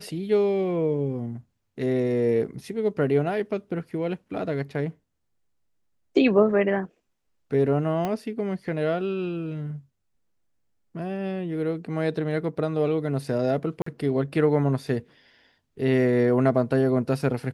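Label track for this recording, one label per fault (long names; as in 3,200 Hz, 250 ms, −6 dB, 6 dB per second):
8.050000	8.050000	click −15 dBFS
13.820000	13.860000	drop-out 44 ms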